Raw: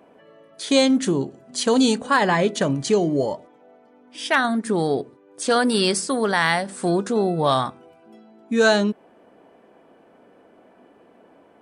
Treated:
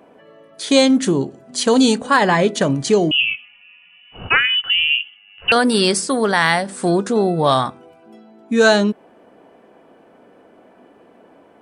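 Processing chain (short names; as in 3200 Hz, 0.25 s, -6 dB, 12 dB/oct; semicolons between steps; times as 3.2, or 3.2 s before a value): 3.11–5.52 inverted band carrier 3200 Hz; gain +4 dB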